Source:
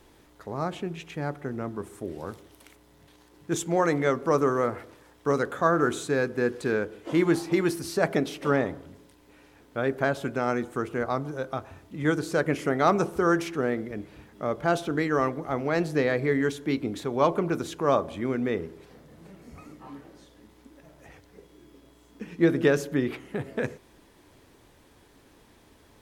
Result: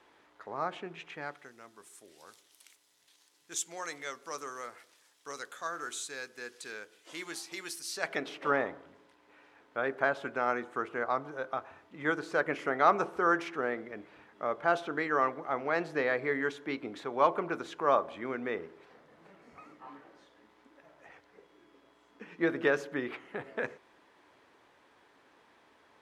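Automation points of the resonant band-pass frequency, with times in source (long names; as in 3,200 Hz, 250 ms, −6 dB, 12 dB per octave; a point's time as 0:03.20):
resonant band-pass, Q 0.73
0:01.12 1,400 Hz
0:01.53 6,600 Hz
0:07.88 6,600 Hz
0:08.30 1,300 Hz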